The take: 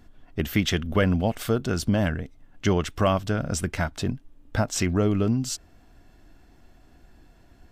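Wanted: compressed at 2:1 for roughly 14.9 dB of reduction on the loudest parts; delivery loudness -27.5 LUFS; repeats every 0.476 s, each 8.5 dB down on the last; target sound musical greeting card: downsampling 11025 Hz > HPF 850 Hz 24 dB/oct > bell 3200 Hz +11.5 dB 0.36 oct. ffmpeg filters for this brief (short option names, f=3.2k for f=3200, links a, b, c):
-af "acompressor=threshold=-46dB:ratio=2,aecho=1:1:476|952|1428|1904:0.376|0.143|0.0543|0.0206,aresample=11025,aresample=44100,highpass=f=850:w=0.5412,highpass=f=850:w=1.3066,equalizer=f=3.2k:t=o:w=0.36:g=11.5,volume=15.5dB"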